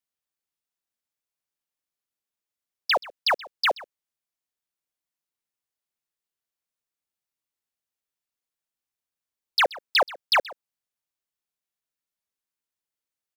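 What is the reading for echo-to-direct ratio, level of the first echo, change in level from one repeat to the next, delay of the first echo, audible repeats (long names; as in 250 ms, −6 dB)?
−20.0 dB, −20.0 dB, repeats not evenly spaced, 128 ms, 1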